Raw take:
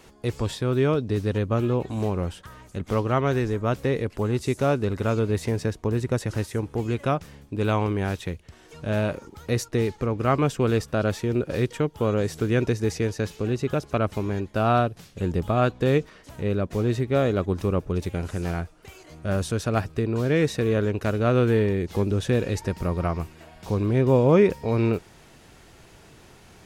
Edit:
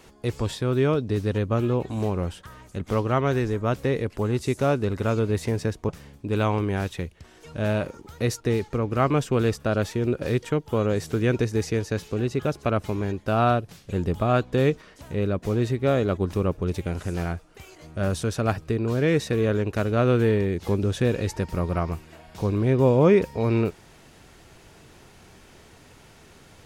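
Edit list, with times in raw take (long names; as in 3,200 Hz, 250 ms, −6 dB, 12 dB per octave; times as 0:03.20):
0:05.89–0:07.17: remove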